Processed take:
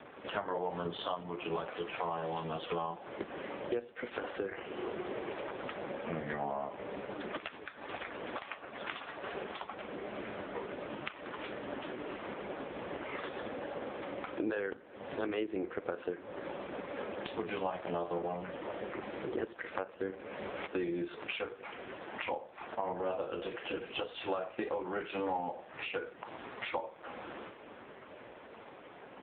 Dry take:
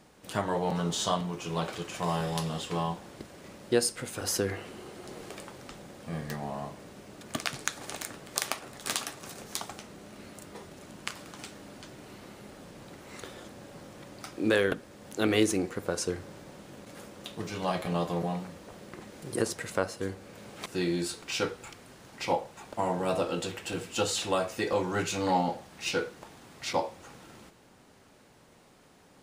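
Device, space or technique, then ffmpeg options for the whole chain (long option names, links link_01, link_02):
voicemail: -filter_complex "[0:a]asplit=3[link_01][link_02][link_03];[link_01]afade=type=out:start_time=17.67:duration=0.02[link_04];[link_02]asplit=2[link_05][link_06];[link_06]adelay=32,volume=-11dB[link_07];[link_05][link_07]amix=inputs=2:normalize=0,afade=type=in:start_time=17.67:duration=0.02,afade=type=out:start_time=19.33:duration=0.02[link_08];[link_03]afade=type=in:start_time=19.33:duration=0.02[link_09];[link_04][link_08][link_09]amix=inputs=3:normalize=0,highpass=310,lowpass=2900,acompressor=threshold=-45dB:ratio=10,volume=13.5dB" -ar 8000 -c:a libopencore_amrnb -b:a 4750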